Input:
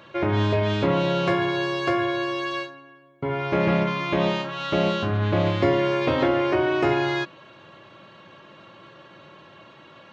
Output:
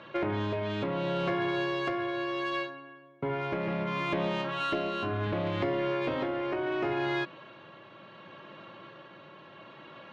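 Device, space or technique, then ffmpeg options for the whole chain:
AM radio: -filter_complex "[0:a]highpass=120,lowpass=3800,acompressor=threshold=0.0562:ratio=6,asoftclip=type=tanh:threshold=0.0944,tremolo=f=0.7:d=0.28,asettb=1/sr,asplit=3[s0][s1][s2];[s0]atrim=end=4.604[s3];[s1]atrim=start=4.6:end=5.27,asetpts=PTS-STARTPTS,afade=t=in:d=0.004:c=qsin,afade=t=out:st=0.666:d=0.004:c=qsin,aecho=1:1:2.9:0.54,atrim=end_sample=29547[s4];[s2]atrim=start=5.266[s5];[s3][s4]acrossfade=d=0.004:c1=hsin:c2=qsin[s6];[s6][s5]acrossfade=d=0.004:c1=qsin:c2=hsin"

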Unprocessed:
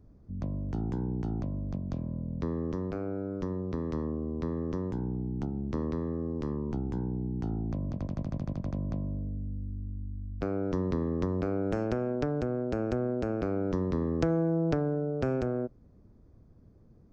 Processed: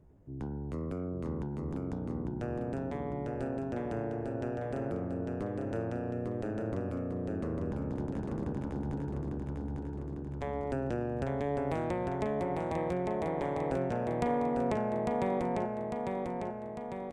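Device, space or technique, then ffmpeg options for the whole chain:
chipmunk voice: -af "asetrate=64194,aresample=44100,atempo=0.686977,aecho=1:1:850|1700|2550|3400|4250|5100|5950|6800:0.668|0.388|0.225|0.13|0.0756|0.0439|0.0254|0.0148,volume=0.596"

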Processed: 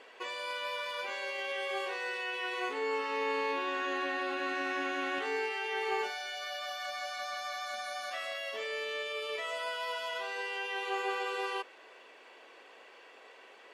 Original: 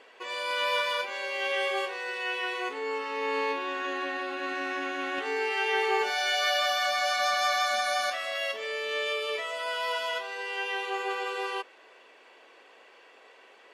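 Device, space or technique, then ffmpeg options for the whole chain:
de-esser from a sidechain: -filter_complex "[0:a]asplit=2[s0][s1];[s1]highpass=5400,apad=whole_len=605593[s2];[s0][s2]sidechaincompress=threshold=0.00316:ratio=10:attack=4.5:release=32"

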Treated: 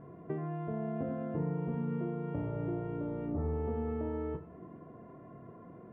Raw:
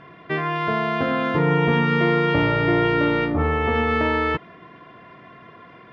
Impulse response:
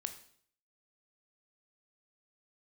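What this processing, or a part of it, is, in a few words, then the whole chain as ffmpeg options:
television next door: -filter_complex "[0:a]acompressor=threshold=0.0355:ratio=5,lowpass=560[s0];[1:a]atrim=start_sample=2205[s1];[s0][s1]afir=irnorm=-1:irlink=0"

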